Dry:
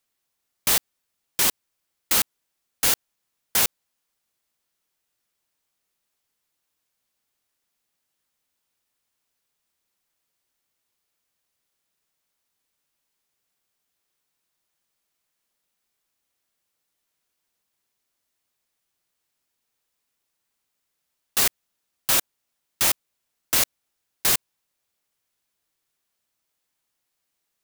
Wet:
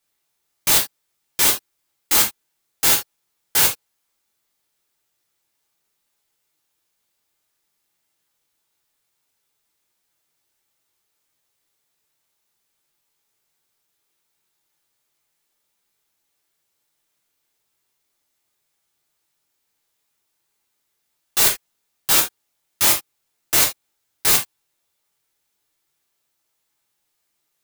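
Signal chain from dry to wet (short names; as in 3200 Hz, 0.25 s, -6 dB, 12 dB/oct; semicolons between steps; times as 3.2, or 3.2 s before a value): non-linear reverb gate 0.1 s falling, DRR -2.5 dB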